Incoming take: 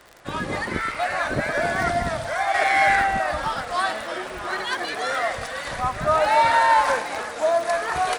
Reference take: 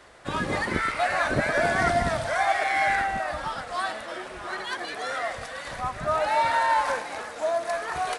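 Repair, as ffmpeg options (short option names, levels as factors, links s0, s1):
-af "adeclick=t=4,asetnsamples=n=441:p=0,asendcmd='2.54 volume volume -5.5dB',volume=1"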